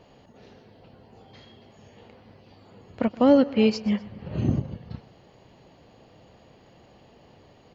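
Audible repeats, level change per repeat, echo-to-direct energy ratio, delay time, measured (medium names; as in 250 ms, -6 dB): 2, -7.0 dB, -18.5 dB, 124 ms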